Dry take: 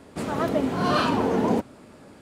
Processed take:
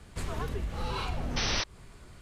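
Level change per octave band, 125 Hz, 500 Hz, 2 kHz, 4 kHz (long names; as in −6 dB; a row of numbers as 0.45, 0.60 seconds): −4.0, −15.0, −5.0, +0.5 decibels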